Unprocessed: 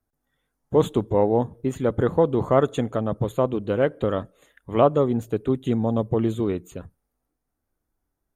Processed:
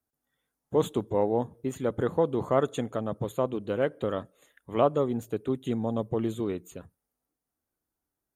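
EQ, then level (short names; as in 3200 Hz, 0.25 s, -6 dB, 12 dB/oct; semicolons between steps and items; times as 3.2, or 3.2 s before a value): HPF 120 Hz 6 dB/oct; high shelf 5000 Hz +6 dB; -5.5 dB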